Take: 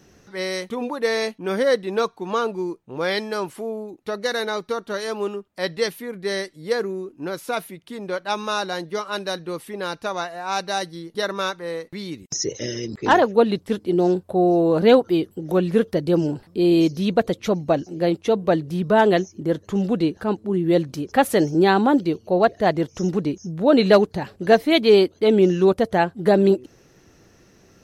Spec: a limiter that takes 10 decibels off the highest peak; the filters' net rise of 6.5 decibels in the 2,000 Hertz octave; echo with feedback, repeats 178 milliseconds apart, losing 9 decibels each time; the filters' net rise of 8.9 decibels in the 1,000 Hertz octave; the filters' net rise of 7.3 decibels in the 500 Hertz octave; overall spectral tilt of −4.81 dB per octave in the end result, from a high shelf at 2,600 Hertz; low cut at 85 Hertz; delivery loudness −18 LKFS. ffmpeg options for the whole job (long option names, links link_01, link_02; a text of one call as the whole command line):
ffmpeg -i in.wav -af "highpass=85,equalizer=frequency=500:width_type=o:gain=7,equalizer=frequency=1000:width_type=o:gain=8.5,equalizer=frequency=2000:width_type=o:gain=7,highshelf=frequency=2600:gain=-6,alimiter=limit=-4.5dB:level=0:latency=1,aecho=1:1:178|356|534|712:0.355|0.124|0.0435|0.0152,volume=-1dB" out.wav